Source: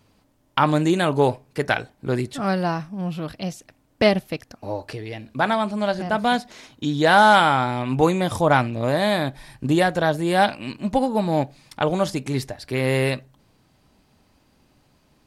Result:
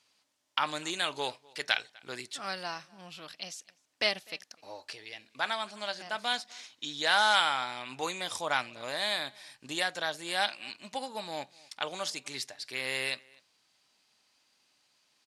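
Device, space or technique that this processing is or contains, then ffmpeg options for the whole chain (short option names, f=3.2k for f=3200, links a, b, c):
piezo pickup straight into a mixer: -filter_complex "[0:a]asettb=1/sr,asplit=3[a][b][c];[a]atrim=end=1.044[d];[b]atrim=start=1.04:end=1.95,asetpts=PTS-STARTPTS,afade=t=in:d=0.004:c=qsin,afade=t=out:st=0.906:d=0.004:c=qsin,equalizer=f=3.5k:w=1.3:g=5[e];[c]atrim=start=1.946[f];[d][e]acrossfade=d=0.004:c1=hsin:c2=qsin[g];[g][f]acrossfade=d=0.004:c1=qsin:c2=hsin,lowpass=5.6k,aderivative,asplit=2[h][i];[i]adelay=250.7,volume=-25dB,highshelf=f=4k:g=-5.64[j];[h][j]amix=inputs=2:normalize=0,volume=5dB"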